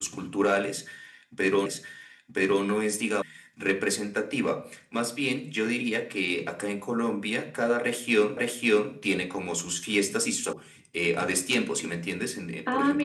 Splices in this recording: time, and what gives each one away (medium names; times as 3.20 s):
1.66 s: repeat of the last 0.97 s
3.22 s: sound stops dead
8.37 s: repeat of the last 0.55 s
10.53 s: sound stops dead